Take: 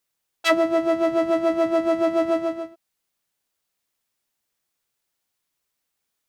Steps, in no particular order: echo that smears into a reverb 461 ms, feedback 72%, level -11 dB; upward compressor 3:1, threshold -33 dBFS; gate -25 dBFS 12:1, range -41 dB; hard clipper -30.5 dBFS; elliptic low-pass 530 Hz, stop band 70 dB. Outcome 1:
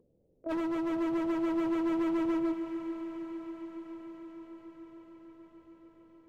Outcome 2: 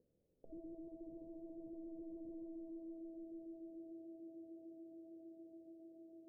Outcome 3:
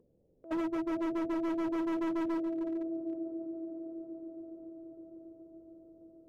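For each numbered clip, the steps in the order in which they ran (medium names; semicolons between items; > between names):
gate > elliptic low-pass > hard clipper > upward compressor > echo that smears into a reverb; echo that smears into a reverb > hard clipper > gate > upward compressor > elliptic low-pass; elliptic low-pass > gate > upward compressor > echo that smears into a reverb > hard clipper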